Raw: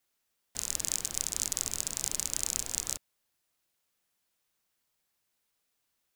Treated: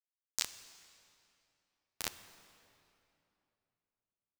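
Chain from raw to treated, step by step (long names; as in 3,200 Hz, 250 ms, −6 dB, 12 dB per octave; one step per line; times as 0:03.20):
time-frequency box erased 0:01.75–0:02.83, 220–11,000 Hz
treble cut that deepens with the level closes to 550 Hz, closed at −33.5 dBFS
low-shelf EQ 360 Hz +6.5 dB
in parallel at +2.5 dB: compressor whose output falls as the input rises −45 dBFS, ratio −1
on the sum: flanger 0.4 Hz, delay 9.9 ms, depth 1.5 ms, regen −1%
bit reduction 5 bits
tempo change 1.4×
on a send at −11 dB: convolution reverb RT60 3.0 s, pre-delay 8 ms
on the sum: level +10 dB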